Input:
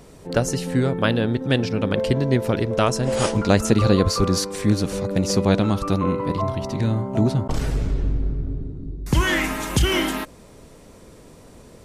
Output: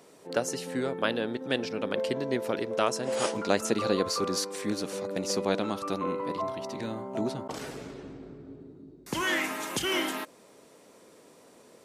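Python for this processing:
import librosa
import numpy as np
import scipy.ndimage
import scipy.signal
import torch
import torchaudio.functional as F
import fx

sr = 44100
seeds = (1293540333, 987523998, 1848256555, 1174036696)

y = scipy.signal.sosfilt(scipy.signal.butter(2, 300.0, 'highpass', fs=sr, output='sos'), x)
y = F.gain(torch.from_numpy(y), -6.0).numpy()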